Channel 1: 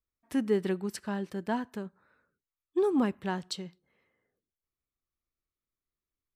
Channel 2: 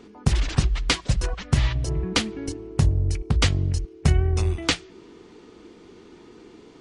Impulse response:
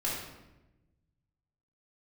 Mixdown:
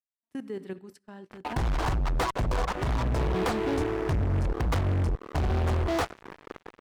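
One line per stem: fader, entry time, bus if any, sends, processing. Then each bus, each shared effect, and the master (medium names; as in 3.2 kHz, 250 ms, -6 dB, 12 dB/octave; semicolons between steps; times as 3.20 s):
-5.5 dB, 0.00 s, send -18 dB, none
-0.5 dB, 1.30 s, no send, FFT filter 120 Hz 0 dB, 200 Hz -7 dB, 770 Hz +10 dB, 1.1 kHz +8 dB, 2.7 kHz -17 dB; compression 4:1, threshold -23 dBFS, peak gain reduction 9 dB; fuzz box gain 35 dB, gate -41 dBFS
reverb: on, RT60 1.0 s, pre-delay 3 ms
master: gate -40 dBFS, range -21 dB; level held to a coarse grid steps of 11 dB; peak limiter -22 dBFS, peak gain reduction 9 dB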